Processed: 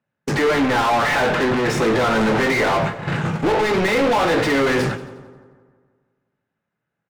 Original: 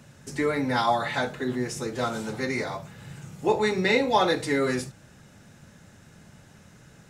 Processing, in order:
noise gate −41 dBFS, range −56 dB
bass and treble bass +5 dB, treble −14 dB
downward compressor, threshold −25 dBFS, peak gain reduction 9 dB
mid-hump overdrive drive 37 dB, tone 2,200 Hz, clips at −15.5 dBFS
double-tracking delay 18 ms −11 dB
on a send: echo with a time of its own for lows and highs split 1,400 Hz, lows 164 ms, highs 88 ms, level −14.5 dB
on the sum: level +4 dB

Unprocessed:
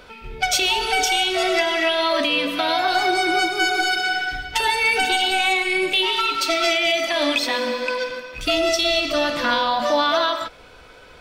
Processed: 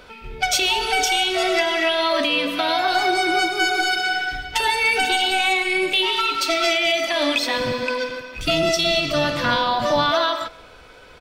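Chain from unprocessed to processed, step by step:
0:07.54–0:10.11: sub-octave generator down 1 octave, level −1 dB
far-end echo of a speakerphone 300 ms, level −26 dB

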